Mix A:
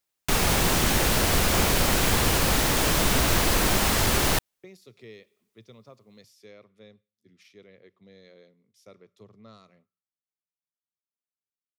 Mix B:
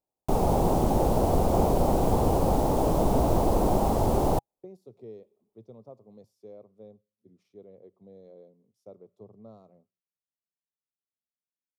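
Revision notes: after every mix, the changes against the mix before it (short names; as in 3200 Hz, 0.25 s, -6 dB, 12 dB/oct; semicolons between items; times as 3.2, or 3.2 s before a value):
master: add EQ curve 130 Hz 0 dB, 820 Hz +5 dB, 1700 Hz -24 dB, 9900 Hz -15 dB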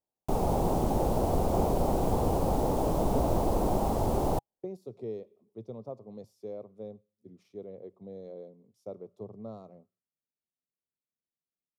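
speech +6.5 dB; background -4.0 dB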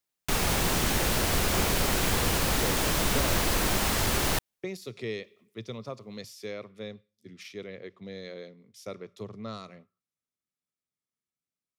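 speech +5.0 dB; master: remove EQ curve 130 Hz 0 dB, 820 Hz +5 dB, 1700 Hz -24 dB, 9900 Hz -15 dB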